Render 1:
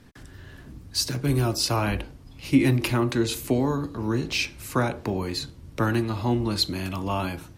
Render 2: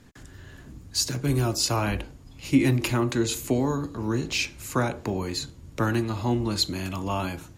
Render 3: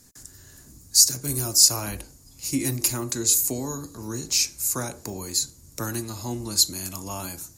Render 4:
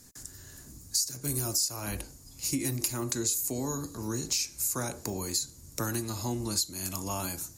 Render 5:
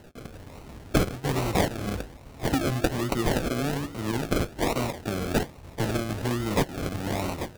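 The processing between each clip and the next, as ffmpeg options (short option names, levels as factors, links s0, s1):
-af "equalizer=f=6900:w=7.6:g=10.5,volume=0.891"
-af "aexciter=amount=11.3:drive=2.2:freq=4600,volume=0.473"
-af "acompressor=threshold=0.0447:ratio=6"
-af "acrusher=samples=37:mix=1:aa=0.000001:lfo=1:lforange=22.2:lforate=1.2,volume=1.78"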